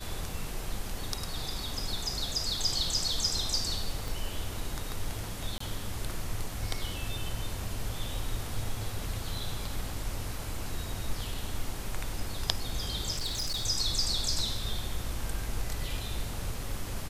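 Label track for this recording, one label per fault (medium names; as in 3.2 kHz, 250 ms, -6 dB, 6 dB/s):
4.080000	4.080000	pop
5.580000	5.600000	dropout 24 ms
13.180000	13.660000	clipped -28.5 dBFS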